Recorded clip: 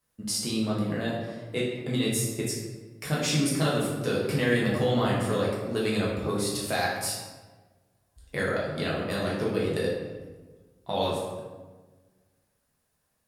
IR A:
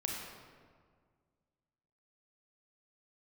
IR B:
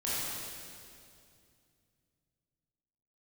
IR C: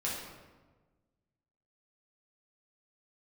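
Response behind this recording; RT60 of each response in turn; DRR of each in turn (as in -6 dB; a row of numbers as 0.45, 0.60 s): C; 1.8, 2.4, 1.3 s; -1.5, -10.0, -6.0 dB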